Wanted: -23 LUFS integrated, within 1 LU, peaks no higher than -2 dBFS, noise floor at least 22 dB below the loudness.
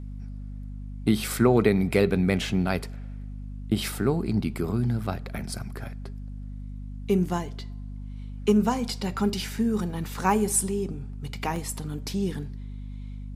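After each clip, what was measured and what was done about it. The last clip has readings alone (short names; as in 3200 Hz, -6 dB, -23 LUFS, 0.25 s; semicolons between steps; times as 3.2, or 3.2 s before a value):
dropouts 2; longest dropout 1.2 ms; hum 50 Hz; harmonics up to 250 Hz; hum level -34 dBFS; loudness -26.5 LUFS; peak -6.0 dBFS; loudness target -23.0 LUFS
-> interpolate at 9.19/11.56, 1.2 ms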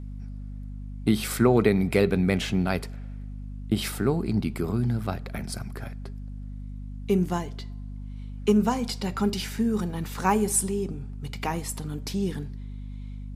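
dropouts 0; hum 50 Hz; harmonics up to 250 Hz; hum level -34 dBFS
-> de-hum 50 Hz, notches 5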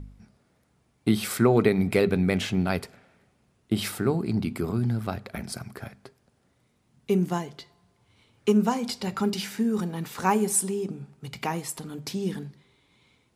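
hum none; loudness -26.5 LUFS; peak -6.0 dBFS; loudness target -23.0 LUFS
-> gain +3.5 dB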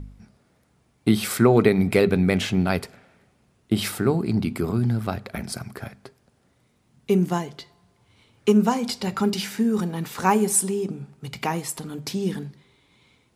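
loudness -23.0 LUFS; peak -2.5 dBFS; noise floor -64 dBFS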